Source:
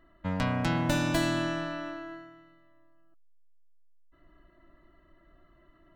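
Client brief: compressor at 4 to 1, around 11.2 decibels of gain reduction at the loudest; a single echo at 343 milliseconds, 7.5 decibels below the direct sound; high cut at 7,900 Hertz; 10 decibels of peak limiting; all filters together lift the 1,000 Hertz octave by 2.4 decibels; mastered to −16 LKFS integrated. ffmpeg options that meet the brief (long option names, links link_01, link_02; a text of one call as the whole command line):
ffmpeg -i in.wav -af "lowpass=7900,equalizer=frequency=1000:width_type=o:gain=3,acompressor=threshold=-36dB:ratio=4,alimiter=level_in=8dB:limit=-24dB:level=0:latency=1,volume=-8dB,aecho=1:1:343:0.422,volume=25.5dB" out.wav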